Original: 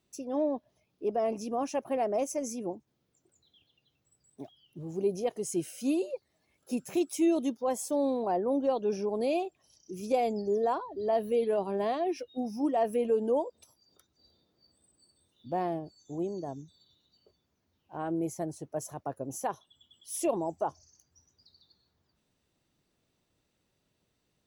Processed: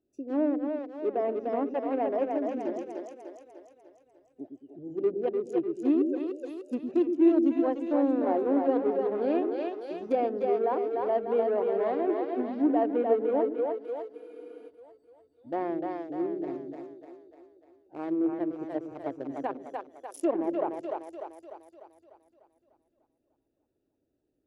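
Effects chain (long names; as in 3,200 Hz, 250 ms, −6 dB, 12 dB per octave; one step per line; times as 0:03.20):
adaptive Wiener filter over 41 samples
low shelf with overshoot 230 Hz −6.5 dB, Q 3
on a send: echo with a time of its own for lows and highs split 370 Hz, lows 111 ms, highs 298 ms, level −3.5 dB
on the sum: treble cut that deepens with the level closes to 2,200 Hz, closed at −25 dBFS
frozen spectrum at 0:14.17, 0.51 s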